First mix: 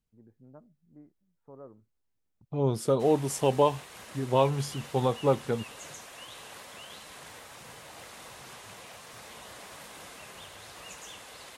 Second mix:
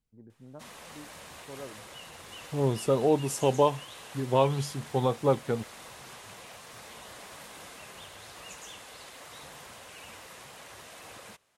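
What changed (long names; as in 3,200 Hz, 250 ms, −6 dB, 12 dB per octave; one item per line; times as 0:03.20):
first voice +4.5 dB
background: entry −2.40 s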